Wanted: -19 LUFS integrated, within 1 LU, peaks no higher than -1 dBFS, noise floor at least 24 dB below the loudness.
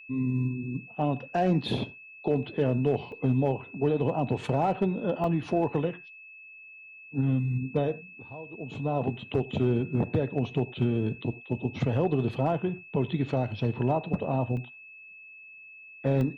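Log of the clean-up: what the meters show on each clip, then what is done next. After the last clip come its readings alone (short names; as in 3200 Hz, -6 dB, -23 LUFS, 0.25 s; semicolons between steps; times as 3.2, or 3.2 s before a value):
dropouts 4; longest dropout 1.7 ms; steady tone 2600 Hz; tone level -46 dBFS; loudness -29.0 LUFS; peak -15.5 dBFS; loudness target -19.0 LUFS
-> interpolate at 3.12/5.24/14.57/16.21, 1.7 ms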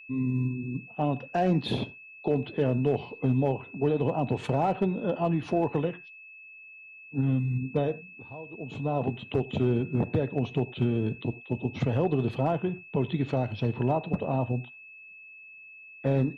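dropouts 0; steady tone 2600 Hz; tone level -46 dBFS
-> notch 2600 Hz, Q 30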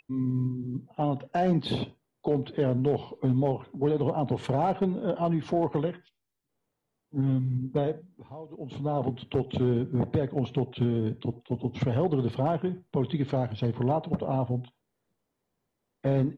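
steady tone none; loudness -29.0 LUFS; peak -16.0 dBFS; loudness target -19.0 LUFS
-> gain +10 dB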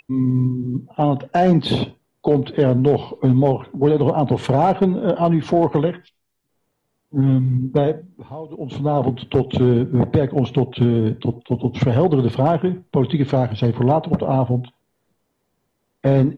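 loudness -19.0 LUFS; peak -6.0 dBFS; noise floor -72 dBFS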